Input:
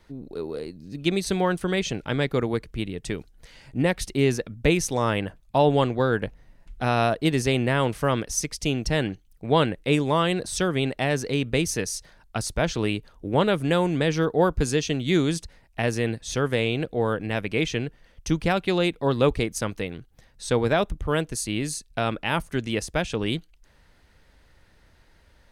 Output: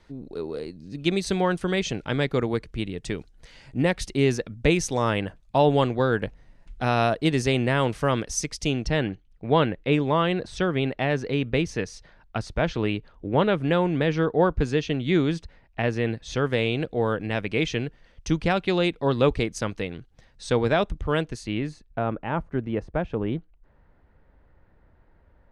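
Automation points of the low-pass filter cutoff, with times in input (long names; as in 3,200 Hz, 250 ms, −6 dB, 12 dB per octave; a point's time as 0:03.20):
0:08.63 8,000 Hz
0:09.05 3,200 Hz
0:15.96 3,200 Hz
0:16.70 6,100 Hz
0:21.19 6,100 Hz
0:21.42 3,300 Hz
0:22.03 1,200 Hz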